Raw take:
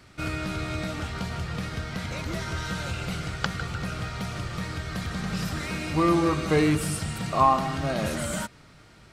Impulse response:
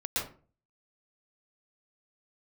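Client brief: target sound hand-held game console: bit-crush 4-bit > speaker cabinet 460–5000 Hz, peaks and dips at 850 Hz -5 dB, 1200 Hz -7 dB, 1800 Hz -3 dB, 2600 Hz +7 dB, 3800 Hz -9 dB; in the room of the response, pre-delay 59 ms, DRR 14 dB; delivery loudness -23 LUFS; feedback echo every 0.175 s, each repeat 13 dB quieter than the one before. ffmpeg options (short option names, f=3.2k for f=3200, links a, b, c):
-filter_complex "[0:a]aecho=1:1:175|350|525:0.224|0.0493|0.0108,asplit=2[a][b];[1:a]atrim=start_sample=2205,adelay=59[c];[b][c]afir=irnorm=-1:irlink=0,volume=-20dB[d];[a][d]amix=inputs=2:normalize=0,acrusher=bits=3:mix=0:aa=0.000001,highpass=460,equalizer=f=850:t=q:w=4:g=-5,equalizer=f=1.2k:t=q:w=4:g=-7,equalizer=f=1.8k:t=q:w=4:g=-3,equalizer=f=2.6k:t=q:w=4:g=7,equalizer=f=3.8k:t=q:w=4:g=-9,lowpass=f=5k:w=0.5412,lowpass=f=5k:w=1.3066,volume=8dB"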